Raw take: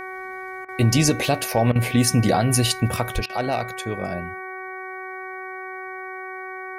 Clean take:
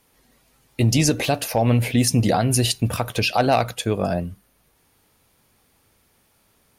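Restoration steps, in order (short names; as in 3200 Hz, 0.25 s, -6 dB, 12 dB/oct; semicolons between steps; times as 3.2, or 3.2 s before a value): de-hum 375.4 Hz, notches 6; 3.14–3.26 HPF 140 Hz 24 dB/oct; interpolate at 0.65/1.72/3.26, 34 ms; 3.16 gain correction +6.5 dB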